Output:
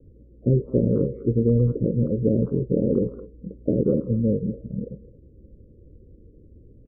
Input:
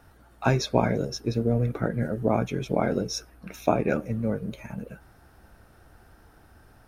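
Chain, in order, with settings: steep low-pass 540 Hz 96 dB/octave; in parallel at +1.5 dB: peak limiter -18.5 dBFS, peak gain reduction 7.5 dB; on the sum: speakerphone echo 210 ms, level -15 dB; MP3 8 kbps 11.025 kHz

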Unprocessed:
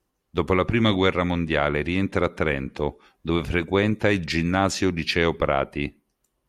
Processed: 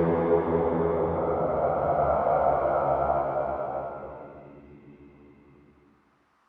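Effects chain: zero-crossing glitches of -17 dBFS; gate -20 dBFS, range -21 dB; LFO low-pass saw up 0.6 Hz 690–1700 Hz; Paulstretch 7.5×, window 0.50 s, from 5.22 s; trim -3 dB

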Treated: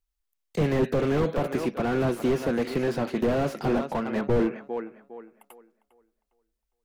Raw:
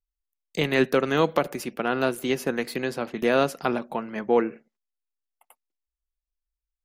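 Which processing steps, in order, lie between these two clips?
tape echo 405 ms, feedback 31%, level -15 dB, low-pass 2.8 kHz; slew-rate limiter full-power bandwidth 23 Hz; trim +5 dB

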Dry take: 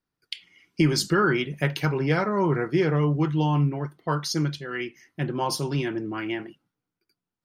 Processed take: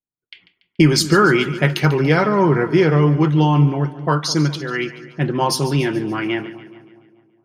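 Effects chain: level-controlled noise filter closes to 840 Hz, open at -23 dBFS; gate with hold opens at -52 dBFS; two-band feedback delay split 970 Hz, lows 208 ms, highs 143 ms, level -15 dB; trim +8 dB

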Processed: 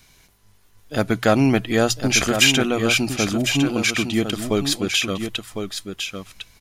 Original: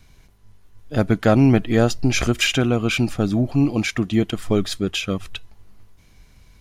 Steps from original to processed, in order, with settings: tilt EQ +2 dB/octave; hum notches 60/120 Hz; delay 1054 ms -7.5 dB; trim +1.5 dB

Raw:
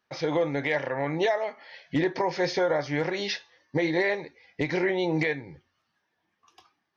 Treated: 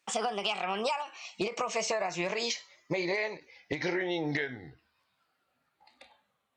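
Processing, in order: gliding tape speed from 147% -> 65%; bass shelf 320 Hz -4.5 dB; compression, threshold -28 dBFS, peak gain reduction 7 dB; treble shelf 3.9 kHz +6.5 dB; endings held to a fixed fall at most 200 dB/s

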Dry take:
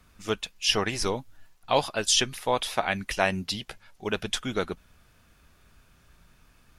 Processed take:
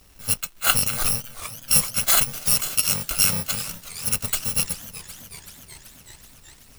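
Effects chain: bit-reversed sample order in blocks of 128 samples; crackle 340 per s -48 dBFS; modulated delay 377 ms, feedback 74%, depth 153 cents, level -15 dB; trim +5 dB

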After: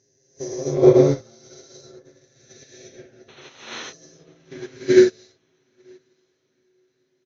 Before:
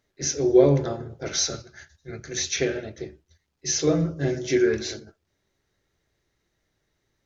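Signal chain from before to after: reverse spectral sustain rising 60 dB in 1.22 s; high-pass 47 Hz 6 dB/octave; peaking EQ 75 Hz +4.5 dB 1.3 oct; comb 7.5 ms, depth 63%; level held to a coarse grid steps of 16 dB; painted sound noise, 3.28–3.50 s, 220–4300 Hz -24 dBFS; echo that smears into a reverb 971 ms, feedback 53%, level -13.5 dB; gated-style reverb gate 450 ms rising, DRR -8 dB; upward expansion 2.5:1, over -28 dBFS; trim -1 dB

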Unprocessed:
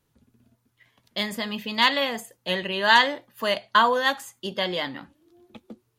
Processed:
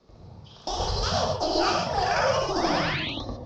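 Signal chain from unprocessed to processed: companding laws mixed up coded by mu; high-order bell 1.4 kHz -12.5 dB 1.2 oct; compression 6:1, threshold -33 dBFS, peak gain reduction 15.5 dB; painted sound rise, 4.55–5.38 s, 490–2600 Hz -42 dBFS; ever faster or slower copies 119 ms, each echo +1 st, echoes 3; distance through air 310 m; gated-style reverb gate 290 ms flat, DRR -1.5 dB; mistuned SSB -190 Hz 260–3500 Hz; speed mistake 45 rpm record played at 78 rpm; trim +8.5 dB

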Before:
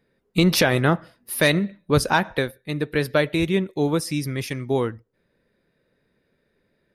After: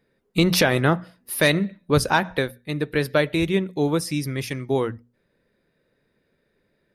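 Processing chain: hum notches 60/120/180/240 Hz

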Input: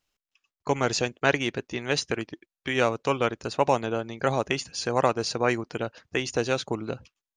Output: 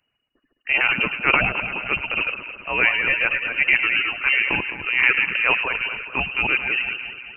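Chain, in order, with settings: chunks repeated in reverse 147 ms, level -4 dB; reverb removal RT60 1.8 s; transient shaper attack -7 dB, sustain +6 dB; echo whose repeats swap between lows and highs 106 ms, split 1.4 kHz, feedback 74%, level -8 dB; frequency inversion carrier 2.9 kHz; trim +6.5 dB

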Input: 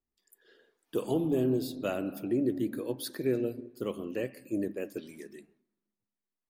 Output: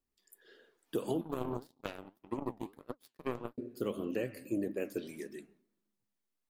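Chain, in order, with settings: 1.21–3.58 s: power-law waveshaper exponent 3; flange 1.7 Hz, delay 3.1 ms, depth 8.8 ms, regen +77%; compression 6:1, threshold -36 dBFS, peak gain reduction 8 dB; trim +6 dB

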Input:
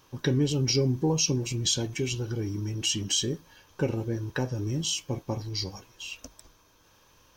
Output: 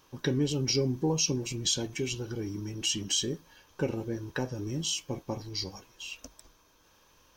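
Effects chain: peaking EQ 110 Hz -5.5 dB 0.68 oct; trim -2 dB

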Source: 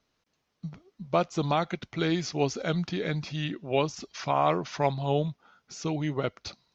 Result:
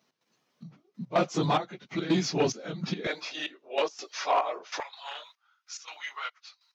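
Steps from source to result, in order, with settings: phase randomisation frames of 50 ms; trance gate "x.xxxx..." 143 bpm -12 dB; saturation -21 dBFS, distortion -14 dB; high-pass 140 Hz 24 dB/octave, from 3.07 s 410 Hz, from 4.80 s 1.1 kHz; trim +4 dB

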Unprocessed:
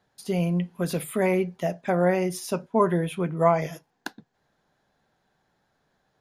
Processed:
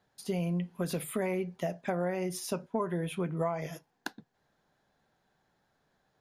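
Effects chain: compression 6:1, threshold -25 dBFS, peak gain reduction 11 dB; trim -3 dB

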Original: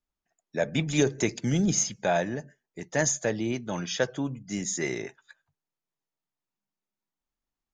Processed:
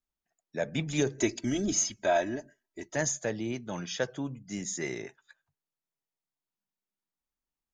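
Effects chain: 1.20–2.96 s: comb 3.1 ms, depth 93%; trim -4.5 dB

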